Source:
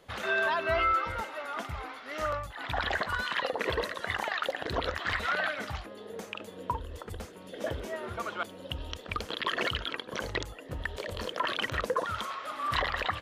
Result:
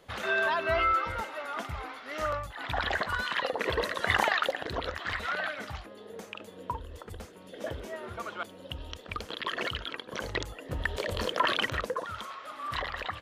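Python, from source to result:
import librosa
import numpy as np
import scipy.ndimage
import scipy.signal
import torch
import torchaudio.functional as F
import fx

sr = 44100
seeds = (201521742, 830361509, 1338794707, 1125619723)

y = fx.gain(x, sr, db=fx.line((3.73, 0.5), (4.2, 8.0), (4.73, -2.5), (9.97, -2.5), (10.93, 4.5), (11.53, 4.5), (11.99, -4.5)))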